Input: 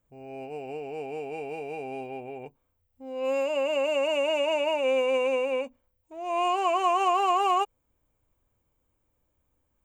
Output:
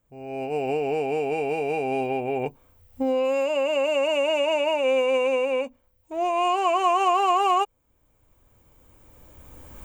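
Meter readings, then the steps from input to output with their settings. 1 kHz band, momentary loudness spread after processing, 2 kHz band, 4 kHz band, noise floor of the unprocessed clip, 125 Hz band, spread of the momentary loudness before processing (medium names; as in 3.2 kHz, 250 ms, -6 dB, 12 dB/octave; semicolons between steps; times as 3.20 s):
+3.5 dB, 9 LU, +3.5 dB, +3.0 dB, -75 dBFS, no reading, 16 LU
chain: recorder AGC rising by 13 dB/s; trim +3 dB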